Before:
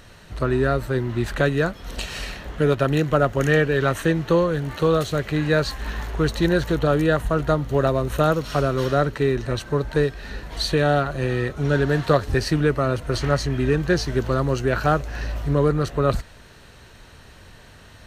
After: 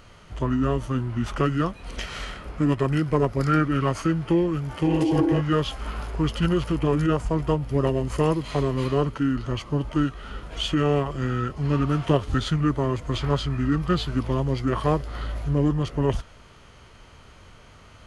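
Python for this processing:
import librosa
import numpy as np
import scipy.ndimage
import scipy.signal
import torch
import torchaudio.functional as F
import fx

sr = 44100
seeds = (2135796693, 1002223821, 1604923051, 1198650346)

y = fx.spec_repair(x, sr, seeds[0], start_s=4.89, length_s=0.49, low_hz=240.0, high_hz=1600.0, source='before')
y = fx.formant_shift(y, sr, semitones=-5)
y = y * librosa.db_to_amplitude(-2.5)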